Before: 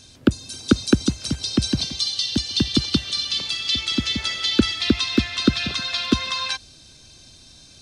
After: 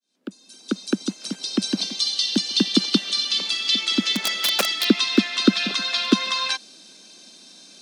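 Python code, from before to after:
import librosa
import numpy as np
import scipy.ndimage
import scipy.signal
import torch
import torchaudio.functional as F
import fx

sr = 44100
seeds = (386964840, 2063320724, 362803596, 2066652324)

y = fx.fade_in_head(x, sr, length_s=2.26)
y = fx.overflow_wrap(y, sr, gain_db=14.0, at=(4.12, 4.89))
y = scipy.signal.sosfilt(scipy.signal.ellip(4, 1.0, 40, 190.0, 'highpass', fs=sr, output='sos'), y)
y = y * librosa.db_to_amplitude(2.5)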